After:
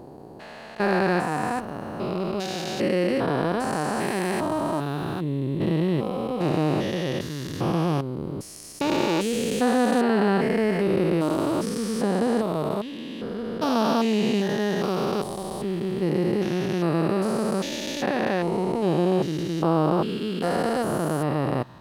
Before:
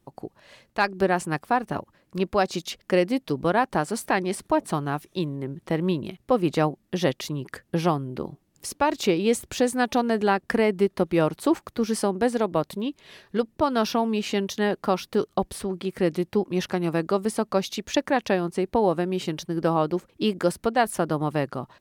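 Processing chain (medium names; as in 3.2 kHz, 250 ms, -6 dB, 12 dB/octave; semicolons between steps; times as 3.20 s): spectrogram pixelated in time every 400 ms; trim +6 dB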